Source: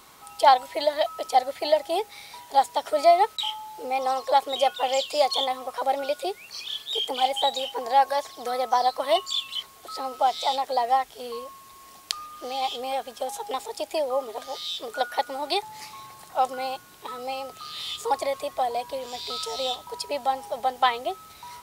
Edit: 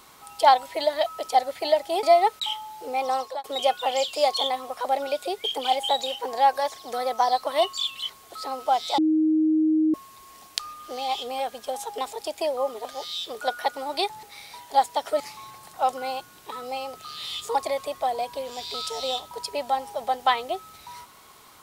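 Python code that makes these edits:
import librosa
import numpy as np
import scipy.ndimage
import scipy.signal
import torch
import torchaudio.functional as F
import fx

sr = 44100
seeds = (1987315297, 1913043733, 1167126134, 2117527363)

y = fx.edit(x, sr, fx.move(start_s=2.03, length_s=0.97, to_s=15.76),
    fx.fade_out_span(start_s=4.16, length_s=0.25),
    fx.cut(start_s=6.41, length_s=0.56),
    fx.bleep(start_s=10.51, length_s=0.96, hz=313.0, db=-17.5), tone=tone)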